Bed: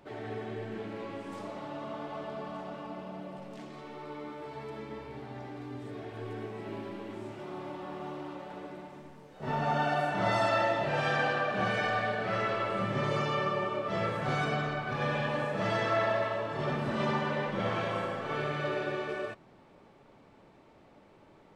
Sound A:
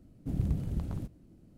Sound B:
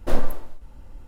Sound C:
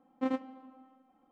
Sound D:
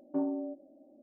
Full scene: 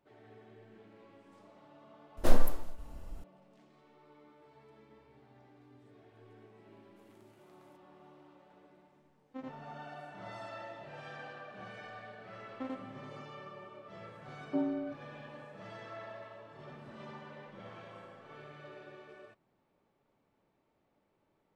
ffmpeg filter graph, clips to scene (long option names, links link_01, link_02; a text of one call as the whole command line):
ffmpeg -i bed.wav -i cue0.wav -i cue1.wav -i cue2.wav -i cue3.wav -filter_complex "[3:a]asplit=2[link_01][link_02];[0:a]volume=-18dB[link_03];[2:a]bass=frequency=250:gain=0,treble=frequency=4000:gain=5[link_04];[1:a]highpass=1000[link_05];[link_01]aresample=16000,aresample=44100[link_06];[link_02]acompressor=threshold=-35dB:ratio=6:attack=3.2:release=140:knee=1:detection=peak[link_07];[link_04]atrim=end=1.07,asetpts=PTS-STARTPTS,volume=-3.5dB,afade=type=in:duration=0.004:curve=hsin,afade=type=out:start_time=1.066:duration=0.004:curve=hsin,adelay=2170[link_08];[link_05]atrim=end=1.57,asetpts=PTS-STARTPTS,volume=-14dB,afade=type=in:duration=0.004:curve=hsin,afade=type=out:start_time=1.566:duration=0.004:curve=hsin,adelay=6700[link_09];[link_06]atrim=end=1.31,asetpts=PTS-STARTPTS,volume=-13dB,afade=type=in:duration=0.004:curve=hsin,afade=type=out:start_time=1.306:duration=0.004:curve=hsin,adelay=9130[link_10];[link_07]atrim=end=1.31,asetpts=PTS-STARTPTS,volume=-1.5dB,afade=type=in:duration=0.004:curve=hsin,afade=type=out:start_time=1.306:duration=0.004:curve=hsin,adelay=12390[link_11];[4:a]atrim=end=1.02,asetpts=PTS-STARTPTS,volume=-1dB,afade=type=in:duration=0.004:curve=hsin,afade=type=out:start_time=1.016:duration=0.004:curve=hsin,adelay=14390[link_12];[link_03][link_08][link_09][link_10][link_11][link_12]amix=inputs=6:normalize=0" out.wav